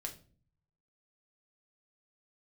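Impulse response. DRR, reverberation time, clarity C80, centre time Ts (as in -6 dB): 1.5 dB, 0.45 s, 18.0 dB, 12 ms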